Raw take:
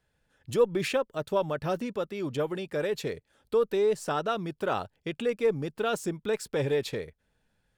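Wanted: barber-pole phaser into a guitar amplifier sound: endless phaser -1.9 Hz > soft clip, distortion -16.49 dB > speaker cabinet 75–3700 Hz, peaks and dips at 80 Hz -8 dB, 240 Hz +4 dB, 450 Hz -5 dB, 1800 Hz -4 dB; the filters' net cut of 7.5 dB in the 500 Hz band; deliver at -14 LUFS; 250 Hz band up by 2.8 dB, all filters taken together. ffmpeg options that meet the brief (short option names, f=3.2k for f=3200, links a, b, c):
-filter_complex "[0:a]equalizer=f=250:t=o:g=4,equalizer=f=500:t=o:g=-6.5,asplit=2[a][b];[b]afreqshift=-1.9[c];[a][c]amix=inputs=2:normalize=1,asoftclip=threshold=-27dB,highpass=75,equalizer=f=80:t=q:w=4:g=-8,equalizer=f=240:t=q:w=4:g=4,equalizer=f=450:t=q:w=4:g=-5,equalizer=f=1.8k:t=q:w=4:g=-4,lowpass=f=3.7k:w=0.5412,lowpass=f=3.7k:w=1.3066,volume=24dB"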